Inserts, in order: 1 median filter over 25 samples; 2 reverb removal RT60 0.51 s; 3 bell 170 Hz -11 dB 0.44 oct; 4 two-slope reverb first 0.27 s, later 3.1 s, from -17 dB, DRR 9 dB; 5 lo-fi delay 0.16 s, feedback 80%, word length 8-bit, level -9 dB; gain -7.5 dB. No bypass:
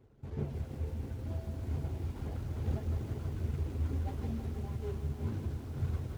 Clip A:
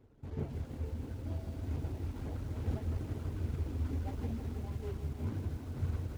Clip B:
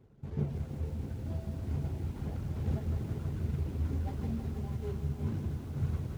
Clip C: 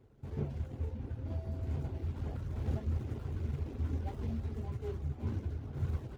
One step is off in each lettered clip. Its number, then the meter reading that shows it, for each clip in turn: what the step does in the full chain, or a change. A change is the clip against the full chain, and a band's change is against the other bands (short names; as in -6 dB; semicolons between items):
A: 4, loudness change -1.5 LU; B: 3, 250 Hz band +3.0 dB; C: 5, 4 kHz band -2.0 dB